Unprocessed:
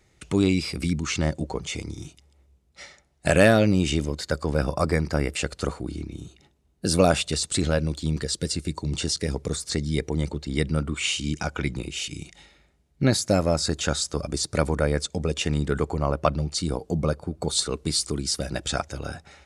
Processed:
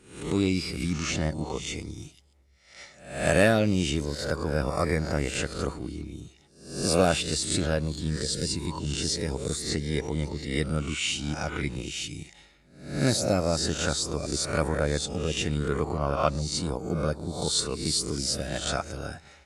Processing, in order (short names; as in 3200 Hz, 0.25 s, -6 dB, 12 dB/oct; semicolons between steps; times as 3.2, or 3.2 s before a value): spectral swells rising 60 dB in 0.57 s; gain -4.5 dB; Vorbis 64 kbps 32000 Hz